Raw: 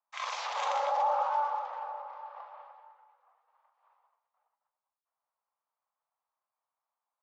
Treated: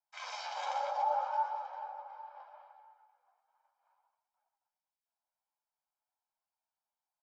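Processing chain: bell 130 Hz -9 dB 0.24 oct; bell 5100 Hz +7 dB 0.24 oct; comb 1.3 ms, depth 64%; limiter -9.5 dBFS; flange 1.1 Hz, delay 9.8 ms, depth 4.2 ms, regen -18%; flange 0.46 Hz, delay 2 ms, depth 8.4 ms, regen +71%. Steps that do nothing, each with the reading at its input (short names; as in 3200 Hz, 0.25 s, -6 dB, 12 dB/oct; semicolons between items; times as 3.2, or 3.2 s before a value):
bell 130 Hz: input band starts at 450 Hz; limiter -9.5 dBFS: input peak -16.0 dBFS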